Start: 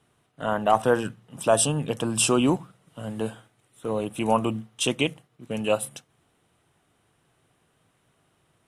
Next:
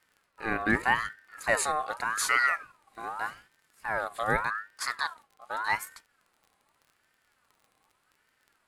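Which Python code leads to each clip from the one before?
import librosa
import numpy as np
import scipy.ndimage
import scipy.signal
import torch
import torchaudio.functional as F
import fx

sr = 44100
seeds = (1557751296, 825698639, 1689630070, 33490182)

y = fx.dmg_crackle(x, sr, seeds[0], per_s=34.0, level_db=-42.0)
y = fx.hpss(y, sr, part='percussive', gain_db=-6)
y = fx.ring_lfo(y, sr, carrier_hz=1300.0, swing_pct=30, hz=0.84)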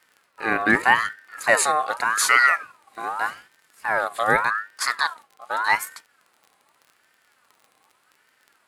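y = fx.highpass(x, sr, hz=270.0, slope=6)
y = F.gain(torch.from_numpy(y), 8.5).numpy()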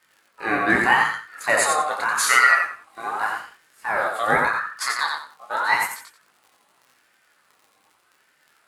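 y = fx.echo_feedback(x, sr, ms=88, feedback_pct=23, wet_db=-4.0)
y = fx.detune_double(y, sr, cents=11)
y = F.gain(torch.from_numpy(y), 3.0).numpy()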